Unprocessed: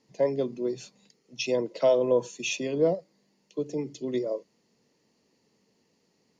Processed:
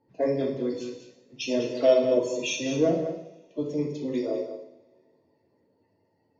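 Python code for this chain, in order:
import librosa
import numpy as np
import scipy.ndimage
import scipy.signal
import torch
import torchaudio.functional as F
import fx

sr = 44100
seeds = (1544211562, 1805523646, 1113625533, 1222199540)

p1 = fx.spec_quant(x, sr, step_db=30)
p2 = fx.env_lowpass(p1, sr, base_hz=1900.0, full_db=-24.0)
p3 = p2 + fx.echo_single(p2, sr, ms=201, db=-10.0, dry=0)
p4 = fx.rev_double_slope(p3, sr, seeds[0], early_s=0.66, late_s=2.5, knee_db=-24, drr_db=-1.0)
y = p4 * librosa.db_to_amplitude(-1.5)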